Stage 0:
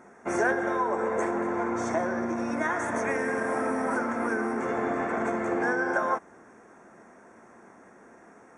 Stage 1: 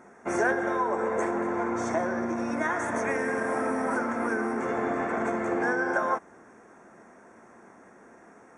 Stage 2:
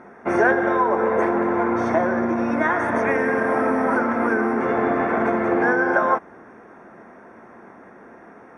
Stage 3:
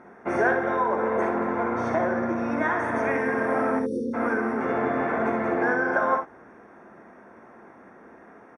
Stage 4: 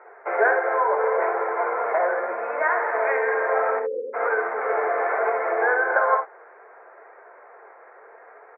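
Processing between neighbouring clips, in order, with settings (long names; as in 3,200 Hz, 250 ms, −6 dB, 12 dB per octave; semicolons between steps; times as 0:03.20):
no processing that can be heard
moving average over 6 samples; level +8 dB
time-frequency box erased 0:03.79–0:04.14, 540–3,500 Hz; ambience of single reflections 53 ms −9 dB, 68 ms −10 dB; level −5 dB
Chebyshev band-pass filter 430–2,300 Hz, order 4; flanger 0.7 Hz, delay 2.1 ms, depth 4.1 ms, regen −57%; level +8 dB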